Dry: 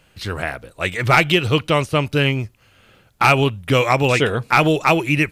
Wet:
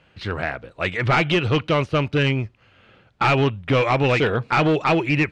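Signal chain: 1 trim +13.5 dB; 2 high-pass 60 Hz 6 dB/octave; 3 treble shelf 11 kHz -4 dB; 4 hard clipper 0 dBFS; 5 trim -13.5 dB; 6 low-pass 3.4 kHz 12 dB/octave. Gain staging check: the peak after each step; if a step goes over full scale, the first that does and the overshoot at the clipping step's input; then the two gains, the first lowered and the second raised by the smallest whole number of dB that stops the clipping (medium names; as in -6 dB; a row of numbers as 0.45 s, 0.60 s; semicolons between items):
+9.0 dBFS, +10.0 dBFS, +10.0 dBFS, 0.0 dBFS, -13.5 dBFS, -12.5 dBFS; step 1, 10.0 dB; step 1 +3.5 dB, step 5 -3.5 dB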